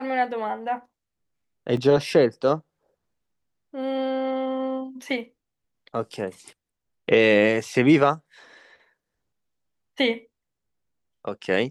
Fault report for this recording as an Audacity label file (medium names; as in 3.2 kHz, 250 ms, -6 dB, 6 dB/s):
1.770000	1.770000	dropout 2.4 ms